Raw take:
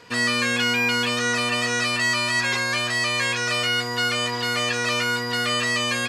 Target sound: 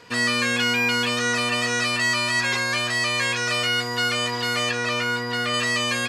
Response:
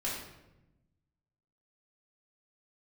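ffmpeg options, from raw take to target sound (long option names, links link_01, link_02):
-filter_complex "[0:a]asettb=1/sr,asplit=3[link_01][link_02][link_03];[link_01]atrim=end=4.714[link_04];[link_02]atrim=start=4.71:end=5.54,asetpts=PTS-STARTPTS,afade=type=in:duration=0.004:curve=qsin,afade=type=out:start_time=0.826:duration=0.004:curve=qsin,highshelf=frequency=4700:gain=-7.5[link_05];[link_03]atrim=start=5.536[link_06];[link_04][link_05]acrossfade=duration=0.004:curve1=hsin:curve2=qsin[link_07];[link_07][link_06]acrossfade=duration=0.004:curve1=qsin:curve2=hsin"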